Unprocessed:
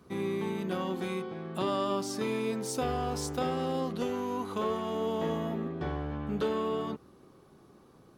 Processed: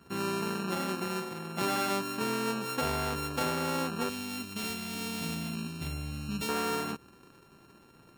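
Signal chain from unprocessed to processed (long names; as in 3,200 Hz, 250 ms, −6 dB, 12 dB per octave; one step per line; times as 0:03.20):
samples sorted by size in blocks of 32 samples
gate on every frequency bin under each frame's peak −30 dB strong
0:04.09–0:06.49: flat-topped bell 770 Hz −11 dB 2.8 octaves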